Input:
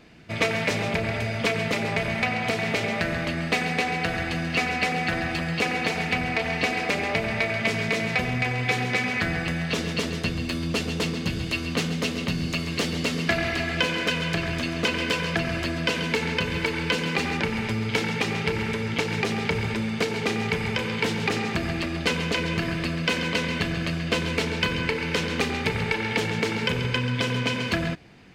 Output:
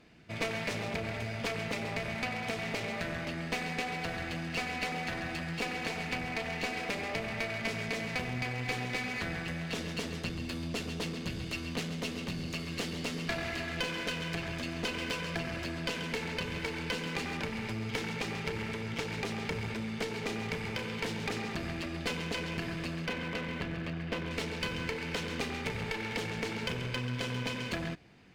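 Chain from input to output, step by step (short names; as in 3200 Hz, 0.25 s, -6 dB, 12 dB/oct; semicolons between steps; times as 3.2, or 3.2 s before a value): 23.06–24.31 LPF 2700 Hz 12 dB/oct; one-sided clip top -28.5 dBFS; gain -8 dB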